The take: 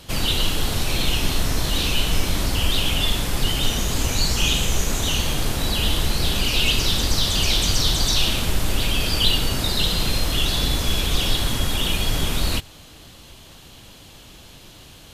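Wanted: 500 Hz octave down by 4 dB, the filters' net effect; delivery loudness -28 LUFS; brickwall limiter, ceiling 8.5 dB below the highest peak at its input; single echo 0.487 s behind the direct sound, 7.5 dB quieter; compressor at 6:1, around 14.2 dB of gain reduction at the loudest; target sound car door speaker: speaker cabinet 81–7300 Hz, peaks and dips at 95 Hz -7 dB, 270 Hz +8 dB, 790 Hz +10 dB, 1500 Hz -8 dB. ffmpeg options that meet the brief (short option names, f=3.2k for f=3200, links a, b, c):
-af "equalizer=f=500:t=o:g=-8,acompressor=threshold=-30dB:ratio=6,alimiter=level_in=4dB:limit=-24dB:level=0:latency=1,volume=-4dB,highpass=81,equalizer=f=95:t=q:w=4:g=-7,equalizer=f=270:t=q:w=4:g=8,equalizer=f=790:t=q:w=4:g=10,equalizer=f=1.5k:t=q:w=4:g=-8,lowpass=f=7.3k:w=0.5412,lowpass=f=7.3k:w=1.3066,aecho=1:1:487:0.422,volume=10.5dB"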